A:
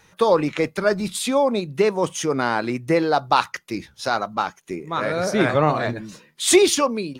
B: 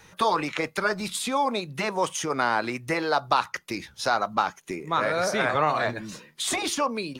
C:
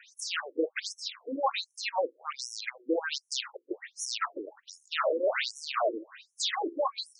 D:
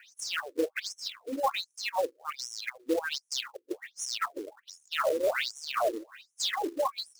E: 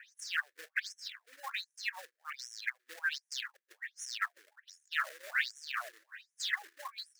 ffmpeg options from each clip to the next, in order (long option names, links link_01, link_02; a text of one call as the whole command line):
ffmpeg -i in.wav -filter_complex "[0:a]afftfilt=real='re*lt(hypot(re,im),1.41)':imag='im*lt(hypot(re,im),1.41)':win_size=1024:overlap=0.75,acrossover=split=650|1400[link_01][link_02][link_03];[link_01]acompressor=threshold=-35dB:ratio=4[link_04];[link_02]acompressor=threshold=-24dB:ratio=4[link_05];[link_03]acompressor=threshold=-32dB:ratio=4[link_06];[link_04][link_05][link_06]amix=inputs=3:normalize=0,volume=2.5dB" out.wav
ffmpeg -i in.wav -af "aeval=exprs='0.0944*(abs(mod(val(0)/0.0944+3,4)-2)-1)':channel_layout=same,afftfilt=real='re*between(b*sr/1024,360*pow(7900/360,0.5+0.5*sin(2*PI*1.3*pts/sr))/1.41,360*pow(7900/360,0.5+0.5*sin(2*PI*1.3*pts/sr))*1.41)':imag='im*between(b*sr/1024,360*pow(7900/360,0.5+0.5*sin(2*PI*1.3*pts/sr))/1.41,360*pow(7900/360,0.5+0.5*sin(2*PI*1.3*pts/sr))*1.41)':win_size=1024:overlap=0.75,volume=3.5dB" out.wav
ffmpeg -i in.wav -af "acrusher=bits=4:mode=log:mix=0:aa=0.000001" out.wav
ffmpeg -i in.wav -af "highpass=frequency=1700:width_type=q:width=5.3,volume=-8.5dB" out.wav